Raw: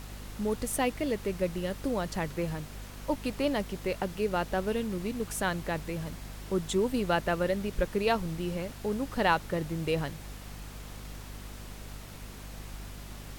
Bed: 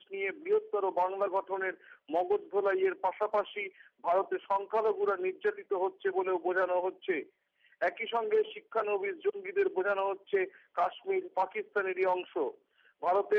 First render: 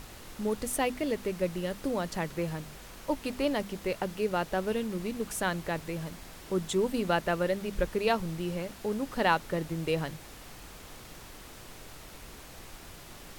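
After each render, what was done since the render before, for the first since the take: notches 50/100/150/200/250 Hz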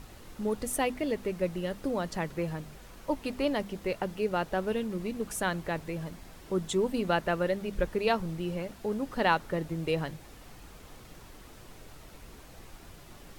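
denoiser 6 dB, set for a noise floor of -48 dBFS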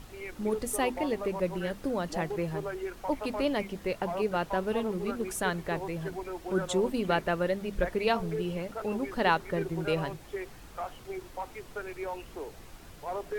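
add bed -7.5 dB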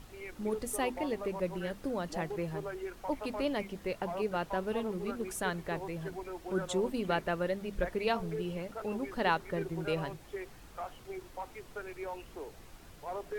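gain -4 dB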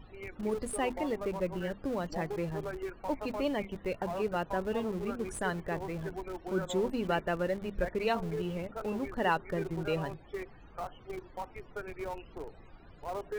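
loudest bins only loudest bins 64; in parallel at -11 dB: Schmitt trigger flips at -37.5 dBFS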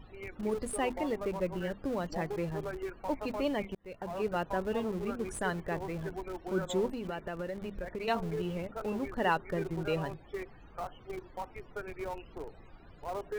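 3.75–4.27 fade in; 6.86–8.08 compressor 5:1, threshold -34 dBFS

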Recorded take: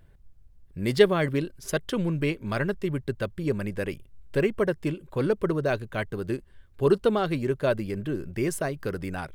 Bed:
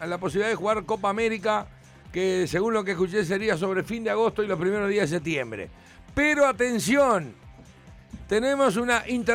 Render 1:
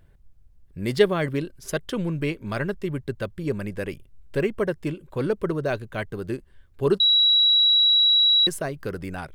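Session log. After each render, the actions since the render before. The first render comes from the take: 7–8.47 bleep 3890 Hz -14.5 dBFS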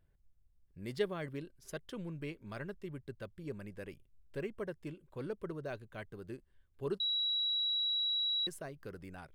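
gain -16 dB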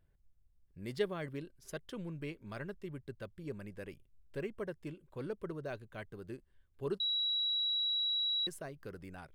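nothing audible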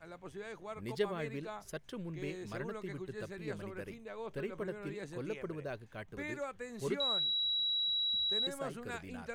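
add bed -21 dB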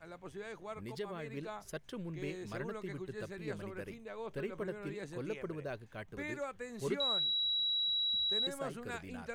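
0.78–1.37 compressor 2:1, threshold -42 dBFS

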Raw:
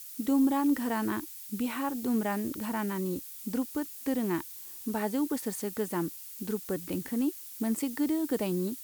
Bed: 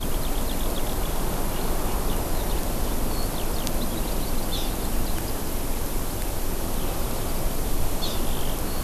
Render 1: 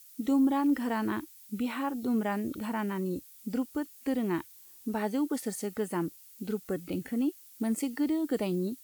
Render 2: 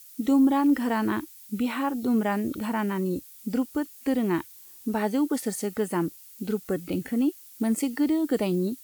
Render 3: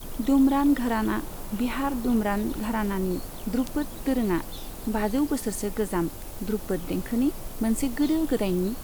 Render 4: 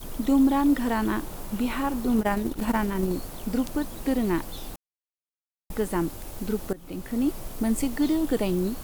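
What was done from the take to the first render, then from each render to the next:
noise print and reduce 9 dB
gain +5 dB
add bed -11.5 dB
2.18–3.12 transient shaper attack +11 dB, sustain -11 dB; 4.76–5.7 mute; 6.73–7.29 fade in, from -18.5 dB

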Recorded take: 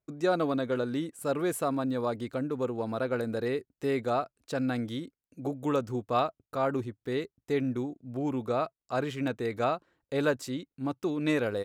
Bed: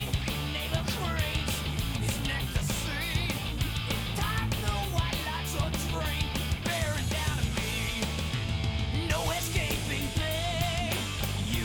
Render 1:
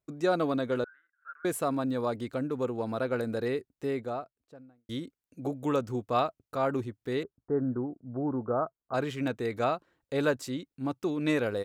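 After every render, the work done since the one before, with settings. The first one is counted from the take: 0.84–1.45 Butterworth band-pass 1500 Hz, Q 6; 3.43–4.89 studio fade out; 7.23–8.94 steep low-pass 1600 Hz 72 dB/oct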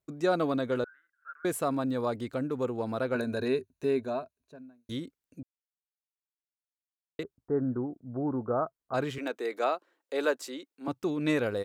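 3.14–4.92 ripple EQ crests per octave 1.5, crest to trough 11 dB; 5.43–7.19 mute; 9.18–10.88 HPF 320 Hz 24 dB/oct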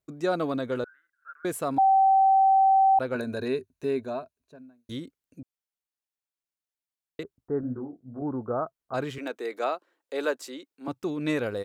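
1.78–2.99 bleep 773 Hz -16 dBFS; 7.61–8.22 detuned doubles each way 60 cents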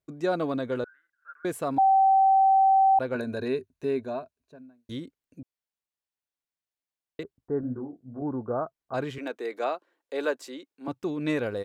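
high shelf 5600 Hz -6 dB; notch 1300 Hz, Q 16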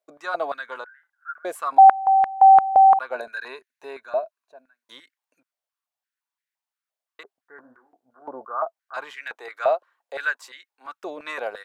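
stepped high-pass 5.8 Hz 620–1800 Hz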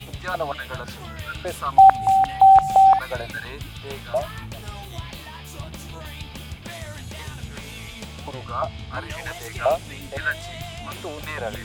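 add bed -5.5 dB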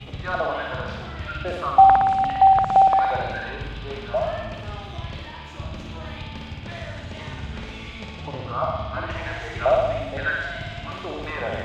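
air absorption 170 m; flutter echo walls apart 9.9 m, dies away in 1.2 s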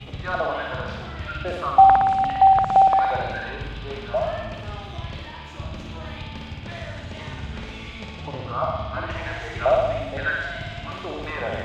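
nothing audible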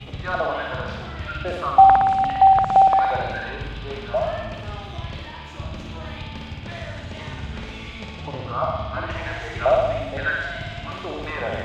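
gain +1 dB

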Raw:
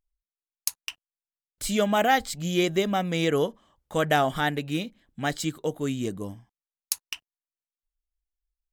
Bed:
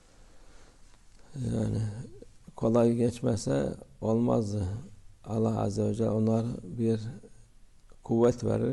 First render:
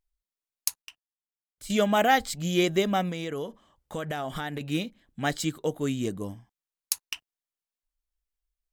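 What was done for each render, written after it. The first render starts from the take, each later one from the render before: 0.82–1.7 gain -11.5 dB; 3.09–4.61 compressor, threshold -29 dBFS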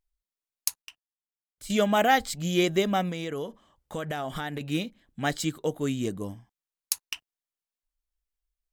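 nothing audible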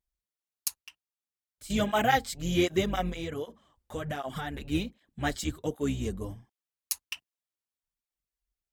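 octaver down 2 oct, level -4 dB; tape flanging out of phase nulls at 1.3 Hz, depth 7.4 ms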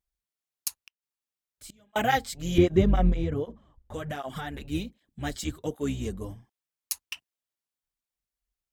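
0.78–1.96 flipped gate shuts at -32 dBFS, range -34 dB; 2.58–3.94 tilt -3.5 dB/oct; 4.66–5.36 bell 1200 Hz -5.5 dB 2.9 oct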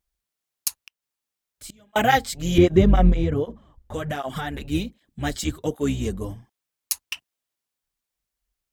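gain +6 dB; limiter -3 dBFS, peak gain reduction 2.5 dB

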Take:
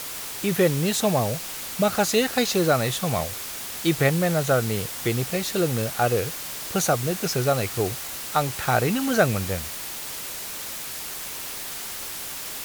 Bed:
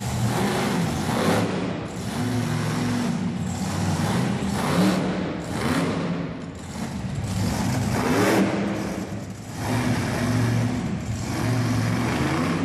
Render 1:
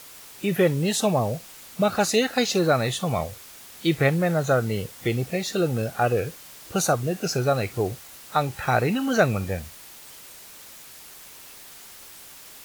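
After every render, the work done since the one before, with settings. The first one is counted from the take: noise print and reduce 11 dB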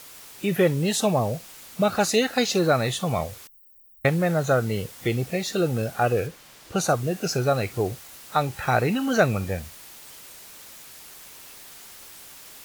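3.47–4.05 inverse Chebyshev band-stop 190–6300 Hz, stop band 80 dB; 6.26–6.88 high shelf 4800 Hz -> 8900 Hz -9 dB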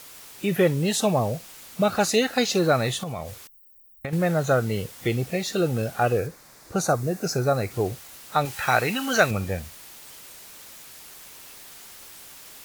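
3.03–4.13 compressor, threshold -28 dBFS; 6.17–7.71 bell 3000 Hz -11.5 dB 0.57 oct; 8.45–9.31 tilt shelf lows -6 dB, about 720 Hz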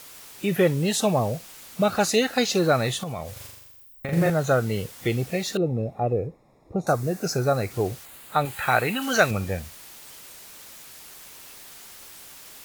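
3.32–4.3 flutter echo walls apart 7.1 m, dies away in 0.98 s; 5.57–6.87 running mean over 29 samples; 8.05–9.02 bell 5600 Hz -12.5 dB 0.45 oct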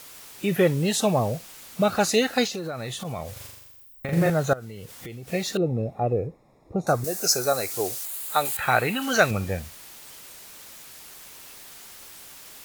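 2.47–3.05 compressor, threshold -29 dBFS; 4.53–5.28 compressor 8:1, threshold -35 dBFS; 7.04–8.57 tone controls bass -14 dB, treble +13 dB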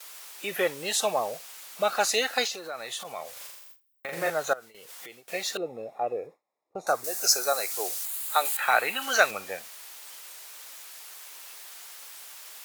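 HPF 640 Hz 12 dB/oct; gate with hold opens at -37 dBFS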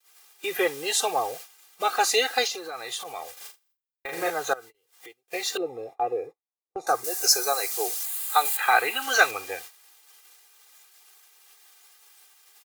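gate -42 dBFS, range -26 dB; comb 2.5 ms, depth 83%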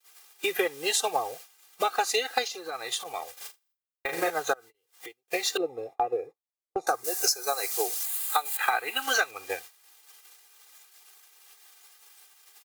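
transient shaper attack +5 dB, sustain -5 dB; compressor 8:1, threshold -22 dBFS, peak gain reduction 13.5 dB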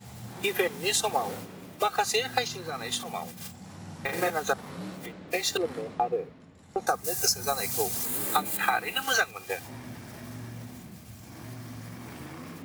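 add bed -19 dB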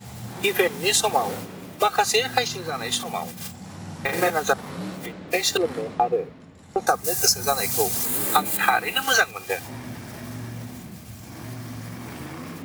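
gain +6 dB; limiter -3 dBFS, peak gain reduction 1 dB

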